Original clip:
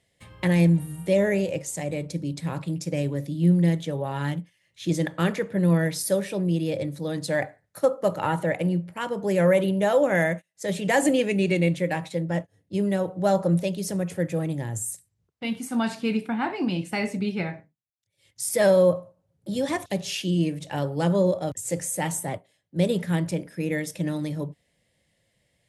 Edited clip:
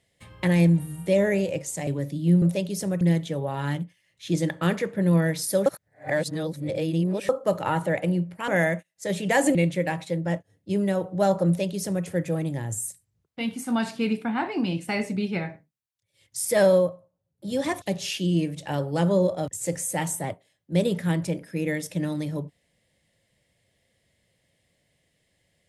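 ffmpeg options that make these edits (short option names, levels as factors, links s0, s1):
-filter_complex "[0:a]asplit=10[s0][s1][s2][s3][s4][s5][s6][s7][s8][s9];[s0]atrim=end=1.872[s10];[s1]atrim=start=3.028:end=3.582[s11];[s2]atrim=start=13.498:end=14.092[s12];[s3]atrim=start=3.578:end=6.232[s13];[s4]atrim=start=6.228:end=7.862,asetpts=PTS-STARTPTS,areverse[s14];[s5]atrim=start=7.858:end=9.052[s15];[s6]atrim=start=10.068:end=11.142[s16];[s7]atrim=start=11.588:end=18.95,asetpts=PTS-STARTPTS,afade=t=out:st=7.192:d=0.17:silence=0.354813[s17];[s8]atrim=start=18.95:end=19.43,asetpts=PTS-STARTPTS,volume=0.355[s18];[s9]atrim=start=19.43,asetpts=PTS-STARTPTS,afade=t=in:d=0.17:silence=0.354813[s19];[s10][s11]acrossfade=d=0.004:c1=hsin:c2=hsin[s20];[s20][s12]acrossfade=d=0.004:c1=hsin:c2=hsin[s21];[s21][s13]acrossfade=d=0.004:c1=hsin:c2=hsin[s22];[s22][s14]acrossfade=d=0.004:c1=hsin:c2=hsin[s23];[s23][s15]acrossfade=d=0.004:c1=hsin:c2=hsin[s24];[s24][s16]acrossfade=d=0.004:c1=hsin:c2=hsin[s25];[s17][s18][s19]concat=n=3:v=0:a=1[s26];[s25][s26]acrossfade=d=0.004:c1=hsin:c2=hsin"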